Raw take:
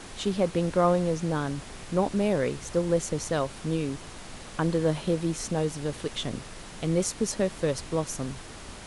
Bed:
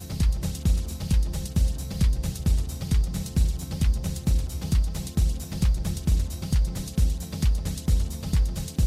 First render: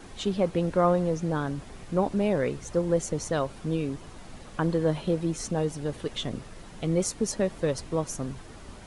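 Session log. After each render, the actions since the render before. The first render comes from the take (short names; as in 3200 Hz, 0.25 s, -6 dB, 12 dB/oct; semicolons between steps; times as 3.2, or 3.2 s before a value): denoiser 8 dB, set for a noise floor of -43 dBFS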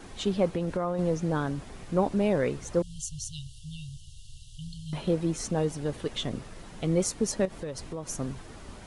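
0.55–0.99 compressor 10:1, threshold -24 dBFS; 2.82–4.93 brick-wall FIR band-stop 150–2700 Hz; 7.45–8.09 compressor 4:1, threshold -33 dBFS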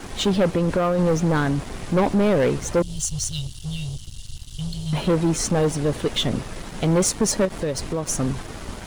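sample leveller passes 3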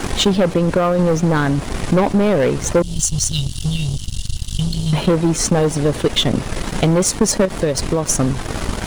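transient shaper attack +7 dB, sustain -8 dB; fast leveller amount 50%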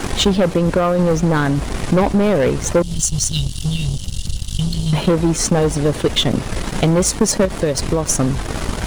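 add bed -8 dB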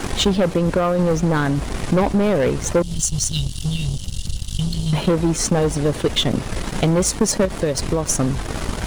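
gain -2.5 dB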